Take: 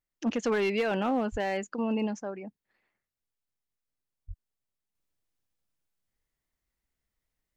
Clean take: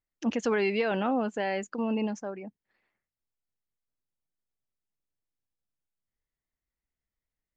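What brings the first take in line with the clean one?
clip repair -22 dBFS; 1.31–1.43 s: high-pass 140 Hz 24 dB/octave; 4.27–4.39 s: high-pass 140 Hz 24 dB/octave; trim 0 dB, from 4.95 s -5.5 dB

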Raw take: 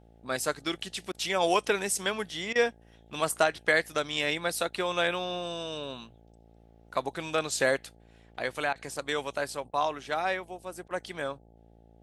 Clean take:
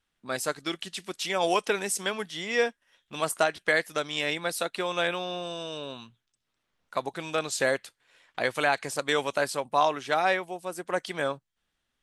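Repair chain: de-hum 56.5 Hz, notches 15; interpolate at 1.12/2.53/8.73/9.71/10.88 s, 24 ms; gain correction +5 dB, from 7.95 s

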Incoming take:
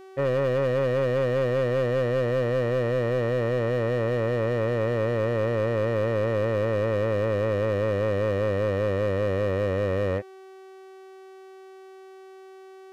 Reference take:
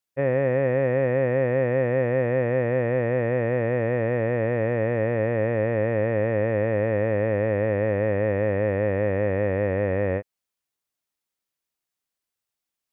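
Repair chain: clip repair -20 dBFS; de-hum 381.2 Hz, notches 37

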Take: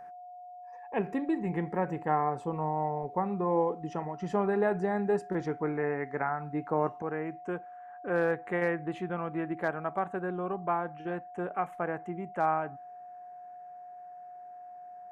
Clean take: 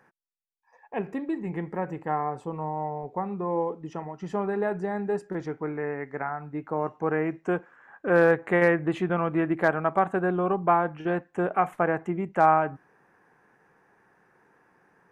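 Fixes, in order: band-stop 720 Hz, Q 30; gain correction +8.5 dB, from 7.02 s

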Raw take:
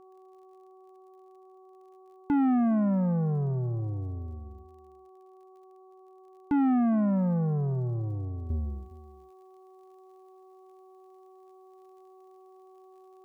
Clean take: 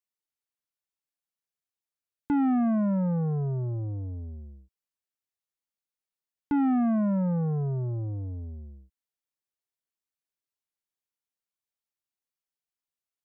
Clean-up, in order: de-click; de-hum 375.9 Hz, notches 3; inverse comb 410 ms -19 dB; trim 0 dB, from 8.50 s -10.5 dB

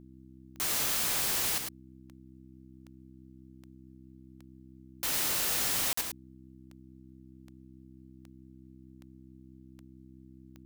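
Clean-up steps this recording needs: de-click; de-hum 64.6 Hz, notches 5; interpolate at 5.93 s, 44 ms; inverse comb 106 ms -6 dB

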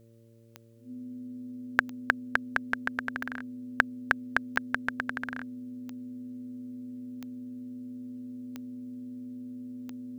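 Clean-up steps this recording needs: de-click; de-hum 114.7 Hz, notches 5; band-stop 250 Hz, Q 30

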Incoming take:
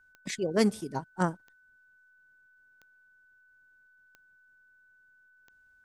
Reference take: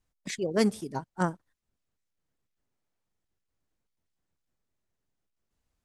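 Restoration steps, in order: de-click; band-stop 1.5 kHz, Q 30

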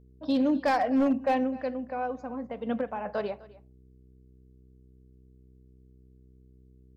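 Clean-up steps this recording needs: clip repair -19 dBFS; de-hum 63.6 Hz, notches 7; inverse comb 254 ms -20.5 dB

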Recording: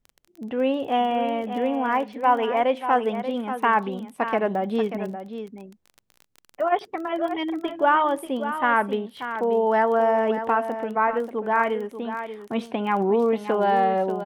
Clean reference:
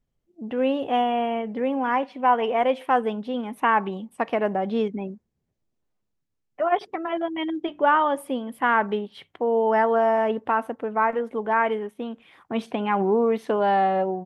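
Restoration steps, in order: de-click; inverse comb 586 ms -10 dB

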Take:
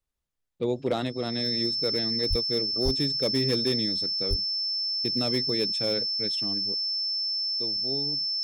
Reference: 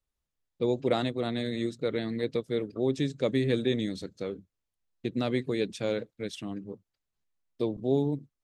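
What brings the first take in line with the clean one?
clip repair -18 dBFS; band-stop 5.3 kHz, Q 30; 2.29–2.41 s: high-pass 140 Hz 24 dB/octave; 2.84–2.96 s: high-pass 140 Hz 24 dB/octave; 4.29–4.41 s: high-pass 140 Hz 24 dB/octave; 6.74 s: gain correction +9.5 dB

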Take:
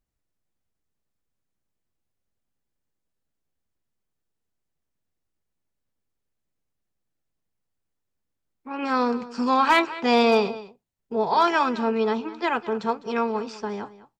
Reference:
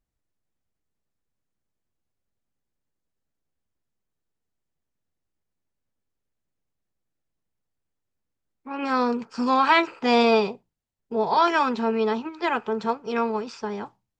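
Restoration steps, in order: clip repair -10 dBFS; inverse comb 204 ms -17 dB

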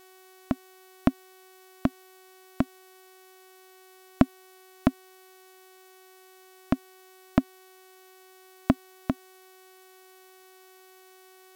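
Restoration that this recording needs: de-hum 374.5 Hz, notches 25; noise reduction 30 dB, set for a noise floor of -54 dBFS

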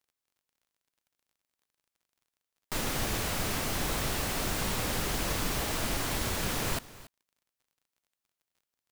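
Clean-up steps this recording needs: de-click; inverse comb 282 ms -18.5 dB

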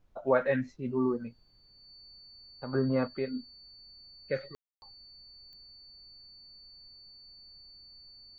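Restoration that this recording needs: de-click; band-stop 4.5 kHz, Q 30; room tone fill 4.55–4.82 s; expander -52 dBFS, range -21 dB

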